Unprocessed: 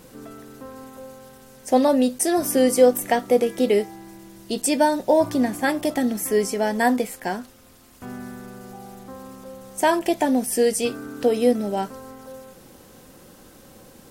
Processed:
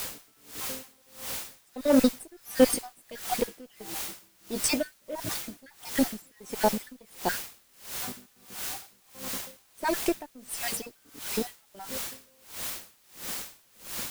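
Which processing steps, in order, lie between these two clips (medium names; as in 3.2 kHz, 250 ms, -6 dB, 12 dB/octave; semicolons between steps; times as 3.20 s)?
random holes in the spectrogram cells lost 56%; Chebyshev shaper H 8 -25 dB, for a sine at -7.5 dBFS; word length cut 6-bit, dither triangular; logarithmic tremolo 1.5 Hz, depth 30 dB; trim +2.5 dB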